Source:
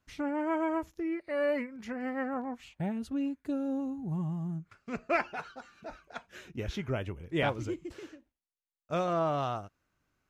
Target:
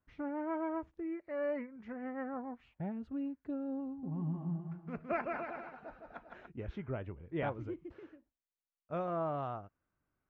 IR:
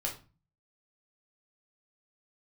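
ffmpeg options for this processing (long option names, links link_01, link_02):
-filter_complex "[0:a]lowpass=1700,asettb=1/sr,asplit=3[link_01][link_02][link_03];[link_01]atrim=end=3.874[link_04];[link_02]atrim=start=3.87:end=6.47,asetpts=PTS-STARTPTS,afade=type=in:duration=0.004:curve=qsin,afade=type=out:start_time=2.596:duration=0.004:curve=qsin,aecho=1:1:160|288|390.4|472.3|537.9:0.631|0.398|0.251|0.158|0.1,atrim=end_sample=114660[link_05];[link_03]atrim=start=6.466[link_06];[link_04][link_05]acrossfade=duration=0.004:curve1=hsin:curve2=qsin[link_07];[link_07][link_06]acrossfade=duration=0.004:curve1=qsin:curve2=hsin,volume=-6dB"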